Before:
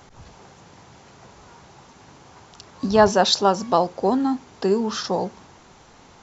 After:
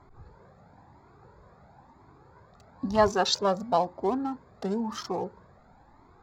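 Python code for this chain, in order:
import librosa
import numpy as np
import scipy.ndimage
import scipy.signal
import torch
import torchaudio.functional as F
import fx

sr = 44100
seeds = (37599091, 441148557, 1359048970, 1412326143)

y = fx.wiener(x, sr, points=15)
y = fx.comb_cascade(y, sr, direction='rising', hz=1.0)
y = y * librosa.db_to_amplitude(-1.5)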